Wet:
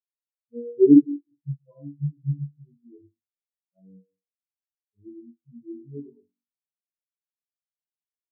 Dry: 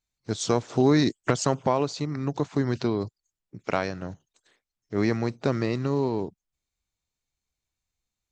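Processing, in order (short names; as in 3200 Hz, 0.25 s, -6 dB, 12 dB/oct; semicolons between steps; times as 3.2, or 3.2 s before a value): median-filter separation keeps harmonic; 1.42–2.48 comb 6.1 ms, depth 94%; flutter echo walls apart 3.6 m, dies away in 0.71 s; on a send at -5 dB: reverb RT60 1.3 s, pre-delay 58 ms; on the sum: spectral expander 4:1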